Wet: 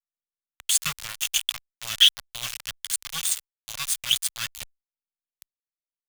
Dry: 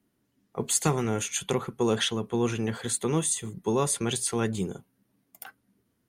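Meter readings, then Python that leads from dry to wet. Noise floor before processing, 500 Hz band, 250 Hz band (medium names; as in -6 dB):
-74 dBFS, under -25 dB, under -25 dB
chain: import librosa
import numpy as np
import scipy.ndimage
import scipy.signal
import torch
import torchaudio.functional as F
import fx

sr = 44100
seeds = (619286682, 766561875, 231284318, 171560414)

y = scipy.signal.sosfilt(scipy.signal.cheby1(4, 1.0, [260.0, 1100.0], 'bandstop', fs=sr, output='sos'), x)
y = fx.peak_eq(y, sr, hz=3100.0, db=13.0, octaves=0.51)
y = np.where(np.abs(y) >= 10.0 ** (-24.0 / 20.0), y, 0.0)
y = fx.tone_stack(y, sr, knobs='10-0-10')
y = y * librosa.db_to_amplitude(5.5)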